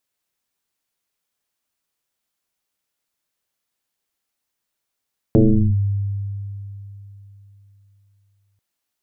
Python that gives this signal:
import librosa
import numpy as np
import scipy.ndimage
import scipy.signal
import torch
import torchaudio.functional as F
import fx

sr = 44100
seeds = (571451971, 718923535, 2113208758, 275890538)

y = fx.fm2(sr, length_s=3.24, level_db=-8, carrier_hz=99.9, ratio=1.12, index=3.4, index_s=0.41, decay_s=3.5, shape='linear')